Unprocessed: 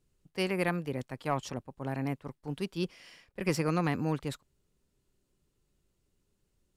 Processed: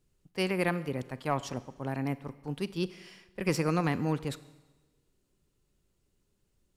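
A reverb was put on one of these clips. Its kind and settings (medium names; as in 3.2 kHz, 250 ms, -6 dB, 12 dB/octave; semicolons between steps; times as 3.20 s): Schroeder reverb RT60 1.2 s, combs from 32 ms, DRR 16 dB; trim +1 dB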